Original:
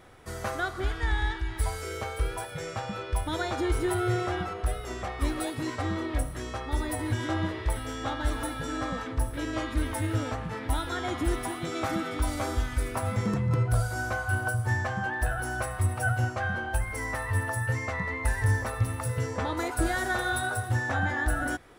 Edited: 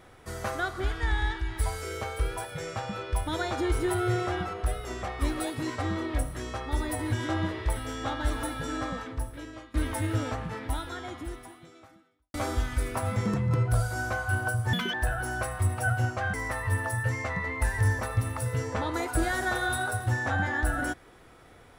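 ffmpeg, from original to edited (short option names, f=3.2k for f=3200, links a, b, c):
-filter_complex "[0:a]asplit=6[a][b][c][d][e][f];[a]atrim=end=9.74,asetpts=PTS-STARTPTS,afade=t=out:st=8.74:d=1:silence=0.0794328[g];[b]atrim=start=9.74:end=12.34,asetpts=PTS-STARTPTS,afade=t=in:d=0.004:c=hsin:silence=0.0794328,afade=t=out:st=0.68:d=1.92:c=qua[h];[c]atrim=start=12.34:end=14.734,asetpts=PTS-STARTPTS,afade=t=in:d=0.004:c=hsin[i];[d]atrim=start=14.73:end=15.13,asetpts=PTS-STARTPTS,asetrate=85554,aresample=44100[j];[e]atrim=start=15.126:end=16.532[k];[f]atrim=start=16.968[l];[g][h][i]concat=n=3:v=0:a=1[m];[m][j]acrossfade=d=0.004:c1=hsin:c2=hsin[n];[n][k]acrossfade=d=0.004:c1=hsin:c2=hsin[o];[o][l]acrossfade=d=0.004:c1=hsin:c2=hsin"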